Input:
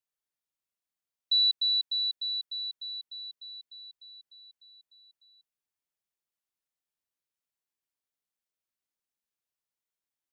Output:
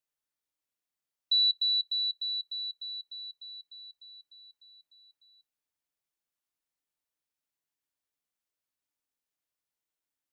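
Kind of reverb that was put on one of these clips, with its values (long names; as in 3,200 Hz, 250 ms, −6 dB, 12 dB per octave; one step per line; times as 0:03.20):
feedback delay network reverb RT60 0.41 s, high-frequency decay 0.35×, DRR 10 dB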